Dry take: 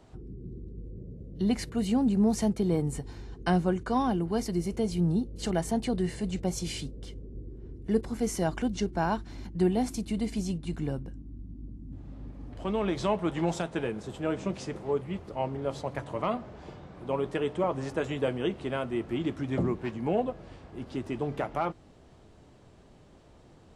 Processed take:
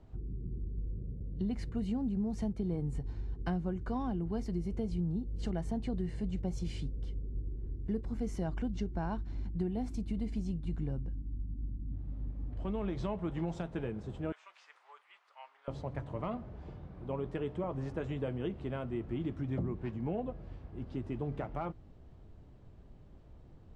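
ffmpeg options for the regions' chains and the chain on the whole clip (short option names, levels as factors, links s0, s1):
-filter_complex "[0:a]asettb=1/sr,asplit=3[s0][s1][s2];[s0]atrim=end=14.324[s3];[s1]atrim=start=14.32:end=15.68,asetpts=PTS-STARTPTS,afade=t=in:d=0.004:c=qsin,afade=t=out:st=1.356:d=0.004:c=qsin,highpass=f=1100:w=0.5412,highpass=f=1100:w=1.3066,acrossover=split=3600[s4][s5];[s5]acompressor=threshold=0.002:ratio=4:attack=1:release=60[s6];[s4][s6]amix=inputs=2:normalize=0[s7];[s2]atrim=start=15.676[s8];[s3][s7]acrossfade=d=0.004:c1=hsin:c2=qsin[s9];[s9][s8]acrossfade=d=0.004:c1=qsin:c2=hsin,aemphasis=mode=reproduction:type=bsi,acompressor=threshold=0.0794:ratio=6,volume=0.376"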